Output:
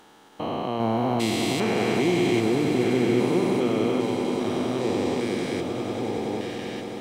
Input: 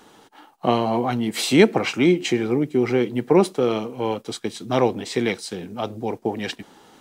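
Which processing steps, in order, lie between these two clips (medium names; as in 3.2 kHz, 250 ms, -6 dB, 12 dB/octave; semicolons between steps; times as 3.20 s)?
spectrogram pixelated in time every 400 ms; echo with a slow build-up 95 ms, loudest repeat 8, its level -14.5 dB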